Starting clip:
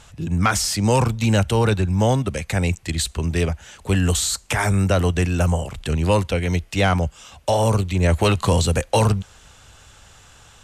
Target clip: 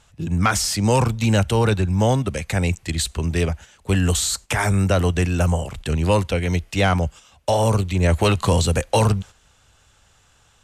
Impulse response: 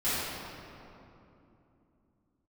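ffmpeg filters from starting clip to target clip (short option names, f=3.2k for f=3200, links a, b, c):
-af "agate=range=-9dB:threshold=-35dB:ratio=16:detection=peak"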